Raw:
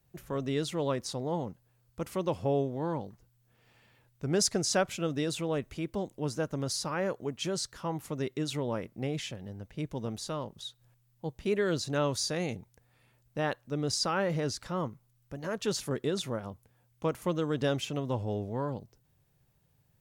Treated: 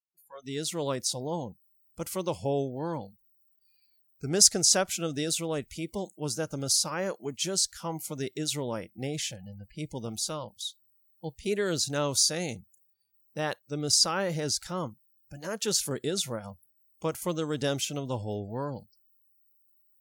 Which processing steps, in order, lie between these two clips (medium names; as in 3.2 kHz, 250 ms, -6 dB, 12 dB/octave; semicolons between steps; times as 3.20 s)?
fade-in on the opening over 0.82 s; tone controls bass -1 dB, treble +12 dB; spectral noise reduction 29 dB